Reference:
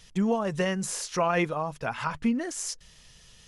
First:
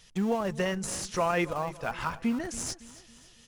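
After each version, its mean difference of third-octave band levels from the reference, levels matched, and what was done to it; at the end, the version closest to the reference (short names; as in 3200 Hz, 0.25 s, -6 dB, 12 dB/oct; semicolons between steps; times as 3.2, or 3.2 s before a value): 5.5 dB: low shelf 180 Hz -4 dB; in parallel at -10 dB: Schmitt trigger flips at -28 dBFS; on the sum: feedback echo 0.279 s, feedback 44%, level -17.5 dB; gain -2.5 dB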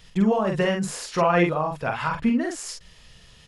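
3.0 dB: bell 10000 Hz -7.5 dB 1.8 oct; notch 6000 Hz, Q 11; doubler 46 ms -4 dB; gain +4 dB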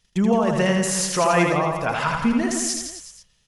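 7.5 dB: gate -49 dBFS, range -20 dB; in parallel at +0.5 dB: level quantiser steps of 21 dB; on the sum: reverse bouncing-ball echo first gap 80 ms, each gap 1.1×, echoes 5; gain +4 dB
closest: second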